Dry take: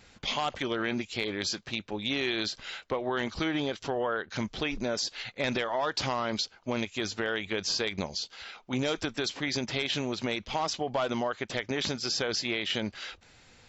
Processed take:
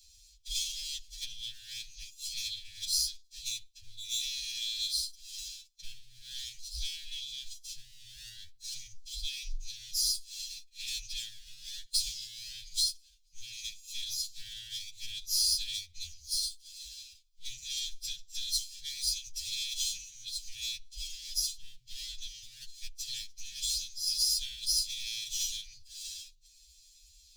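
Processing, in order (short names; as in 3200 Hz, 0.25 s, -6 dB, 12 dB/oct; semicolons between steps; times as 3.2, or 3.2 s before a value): minimum comb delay 1.2 ms; inverse Chebyshev band-stop 210–1100 Hz, stop band 70 dB; time stretch by phase-locked vocoder 2×; gain +5.5 dB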